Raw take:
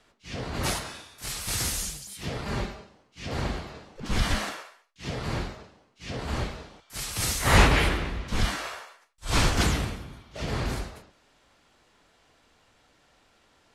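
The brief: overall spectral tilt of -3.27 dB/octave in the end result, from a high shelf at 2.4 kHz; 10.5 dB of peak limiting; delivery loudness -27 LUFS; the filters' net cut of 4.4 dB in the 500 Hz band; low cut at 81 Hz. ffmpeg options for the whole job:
-af "highpass=81,equalizer=f=500:t=o:g=-6,highshelf=f=2400:g=4,volume=1.5,alimiter=limit=0.188:level=0:latency=1"

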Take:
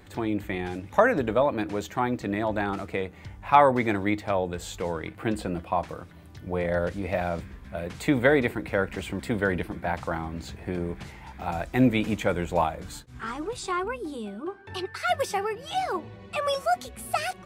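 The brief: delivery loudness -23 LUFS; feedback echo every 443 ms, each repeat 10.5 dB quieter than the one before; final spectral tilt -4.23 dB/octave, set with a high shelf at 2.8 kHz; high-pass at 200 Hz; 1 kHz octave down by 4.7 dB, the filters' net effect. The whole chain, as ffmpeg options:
-af "highpass=200,equalizer=f=1000:t=o:g=-6,highshelf=f=2800:g=-4.5,aecho=1:1:443|886|1329:0.299|0.0896|0.0269,volume=2.24"

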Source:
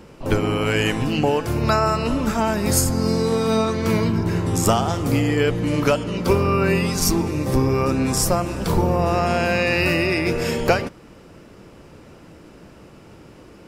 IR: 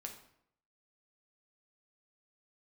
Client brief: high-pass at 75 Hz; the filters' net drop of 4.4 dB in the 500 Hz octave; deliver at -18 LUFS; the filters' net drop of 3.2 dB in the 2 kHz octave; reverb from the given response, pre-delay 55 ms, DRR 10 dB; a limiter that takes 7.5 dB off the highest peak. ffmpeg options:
-filter_complex "[0:a]highpass=75,equalizer=f=500:t=o:g=-5.5,equalizer=f=2000:t=o:g=-4,alimiter=limit=0.224:level=0:latency=1,asplit=2[s0][s1];[1:a]atrim=start_sample=2205,adelay=55[s2];[s1][s2]afir=irnorm=-1:irlink=0,volume=0.473[s3];[s0][s3]amix=inputs=2:normalize=0,volume=1.78"

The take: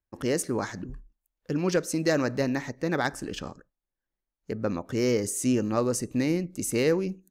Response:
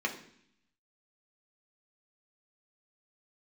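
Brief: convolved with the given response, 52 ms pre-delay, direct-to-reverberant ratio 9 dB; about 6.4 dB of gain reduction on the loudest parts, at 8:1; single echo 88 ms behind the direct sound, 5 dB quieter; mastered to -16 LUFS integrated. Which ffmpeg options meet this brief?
-filter_complex "[0:a]acompressor=threshold=0.0501:ratio=8,aecho=1:1:88:0.562,asplit=2[s0][s1];[1:a]atrim=start_sample=2205,adelay=52[s2];[s1][s2]afir=irnorm=-1:irlink=0,volume=0.158[s3];[s0][s3]amix=inputs=2:normalize=0,volume=5.31"

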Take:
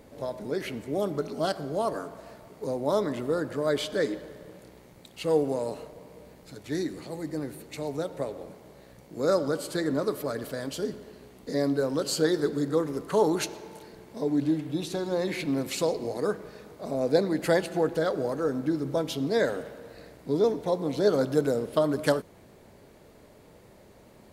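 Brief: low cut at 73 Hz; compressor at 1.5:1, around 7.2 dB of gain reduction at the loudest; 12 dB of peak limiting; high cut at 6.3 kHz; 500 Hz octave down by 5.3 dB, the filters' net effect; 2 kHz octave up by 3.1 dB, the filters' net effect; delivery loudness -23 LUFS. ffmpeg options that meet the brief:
-af "highpass=73,lowpass=6300,equalizer=f=500:t=o:g=-6.5,equalizer=f=2000:t=o:g=4.5,acompressor=threshold=0.00794:ratio=1.5,volume=5.96,alimiter=limit=0.282:level=0:latency=1"

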